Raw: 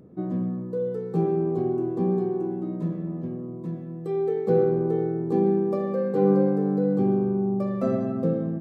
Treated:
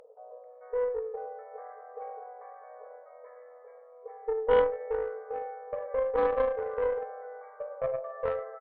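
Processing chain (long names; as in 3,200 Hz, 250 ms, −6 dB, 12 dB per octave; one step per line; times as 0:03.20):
multiband delay without the direct sound lows, highs 440 ms, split 840 Hz
upward compression, threshold −34 dBFS
brick-wall band-pass 420–2,300 Hz
harmonic generator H 3 −17 dB, 4 −14 dB, 6 −21 dB, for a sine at −17 dBFS
level +3.5 dB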